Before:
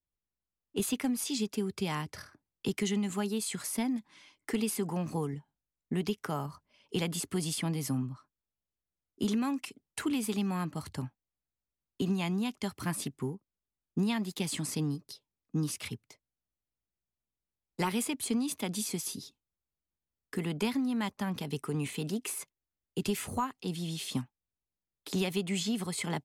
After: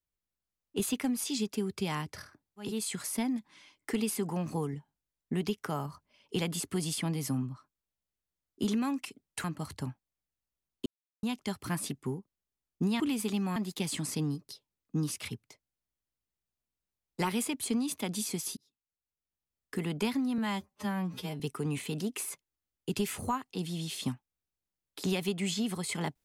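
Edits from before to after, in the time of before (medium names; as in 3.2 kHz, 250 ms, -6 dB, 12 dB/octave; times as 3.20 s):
2.68–3.28 s: delete, crossfade 0.24 s
10.04–10.60 s: move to 14.16 s
12.02–12.39 s: mute
19.17–20.38 s: fade in
20.98–21.49 s: stretch 2×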